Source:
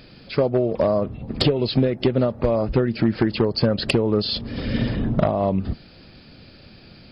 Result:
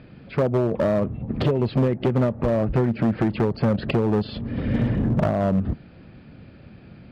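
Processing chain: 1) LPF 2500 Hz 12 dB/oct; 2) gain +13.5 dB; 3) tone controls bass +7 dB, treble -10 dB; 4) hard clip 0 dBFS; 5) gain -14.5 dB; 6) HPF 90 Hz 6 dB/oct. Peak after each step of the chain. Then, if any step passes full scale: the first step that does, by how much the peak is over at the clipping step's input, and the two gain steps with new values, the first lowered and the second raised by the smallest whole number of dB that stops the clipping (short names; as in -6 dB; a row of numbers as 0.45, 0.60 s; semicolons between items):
-8.0, +5.5, +10.0, 0.0, -14.5, -9.5 dBFS; step 2, 10.0 dB; step 2 +3.5 dB, step 5 -4.5 dB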